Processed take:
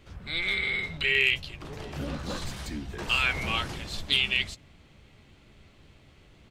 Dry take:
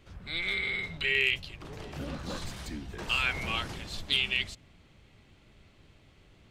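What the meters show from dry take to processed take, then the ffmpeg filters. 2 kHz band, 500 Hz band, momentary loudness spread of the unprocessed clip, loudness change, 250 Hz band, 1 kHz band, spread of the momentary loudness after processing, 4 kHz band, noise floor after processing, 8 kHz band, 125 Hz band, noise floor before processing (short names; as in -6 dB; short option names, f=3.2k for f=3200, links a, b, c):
+3.0 dB, +3.0 dB, 14 LU, +3.0 dB, +3.5 dB, +3.5 dB, 14 LU, +3.0 dB, -57 dBFS, +3.0 dB, +3.5 dB, -61 dBFS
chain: -filter_complex "[0:a]asplit=2[a][b];[b]adelay=14,volume=-13.5dB[c];[a][c]amix=inputs=2:normalize=0,volume=3dB"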